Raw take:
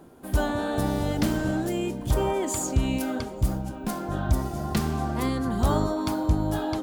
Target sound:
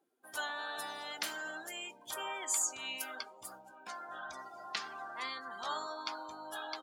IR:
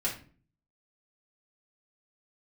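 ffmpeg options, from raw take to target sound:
-filter_complex "[0:a]asettb=1/sr,asplit=3[a][b][c];[a]atrim=end=3.874[d];[b]atrim=start=3.87:end=6.22,asetpts=PTS-STARTPTS,afade=t=in:d=0.004:c=qsin,afade=t=out:st=2.346:d=0.004:c=qsin,acrossover=split=7500[e][f];[f]acompressor=threshold=-55dB:ratio=4:attack=1:release=60[g];[e][g]amix=inputs=2:normalize=0[h];[c]atrim=start=6.216[i];[d][h]acrossfade=d=0.004:c1=hsin:c2=qsin[j];[j][i]acrossfade=d=0.004:c1=qsin:c2=hsin,afftdn=nr=22:nf=-43,highpass=1.5k,asplit=2[k][l];[l]adelay=16,volume=-13dB[m];[k][m]amix=inputs=2:normalize=0,volume=-1dB"

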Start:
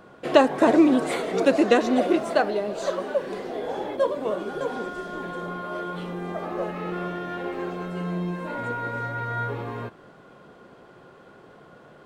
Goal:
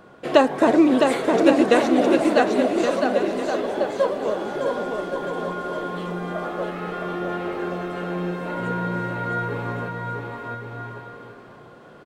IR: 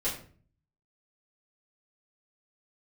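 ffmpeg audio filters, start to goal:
-af "aecho=1:1:660|1122|1445|1672|1830:0.631|0.398|0.251|0.158|0.1,volume=1dB"

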